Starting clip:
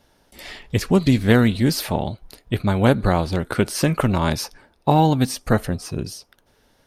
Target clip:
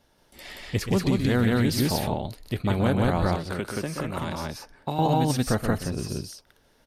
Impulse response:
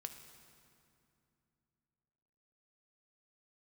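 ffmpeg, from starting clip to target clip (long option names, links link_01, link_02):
-filter_complex "[0:a]asplit=2[link_01][link_02];[link_02]aecho=0:1:125.4|177.8:0.316|0.891[link_03];[link_01][link_03]amix=inputs=2:normalize=0,asettb=1/sr,asplit=3[link_04][link_05][link_06];[link_04]atrim=end=3.354[link_07];[link_05]atrim=start=3.35:end=4.99,asetpts=PTS-STARTPTS,afade=type=in:duration=0.004:curve=qsin,afade=type=out:start_time=1.636:duration=0.004:curve=qsin,acrossover=split=340|2400[link_08][link_09][link_10];[link_08]acompressor=threshold=-28dB:ratio=4[link_11];[link_09]acompressor=threshold=-26dB:ratio=4[link_12];[link_10]acompressor=threshold=-37dB:ratio=4[link_13];[link_11][link_12][link_13]amix=inputs=3:normalize=0[link_14];[link_06]atrim=start=4.986[link_15];[link_07][link_14]acrossfade=duration=0.004:curve1=hsin:curve2=qsin[link_16];[link_16][link_15]acrossfade=duration=0.004:curve1=qsin:curve2=hsin,alimiter=limit=-8dB:level=0:latency=1:release=61,volume=-5dB"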